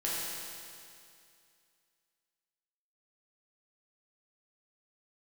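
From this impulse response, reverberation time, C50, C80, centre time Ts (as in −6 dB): 2.4 s, −3.0 dB, −1.0 dB, 157 ms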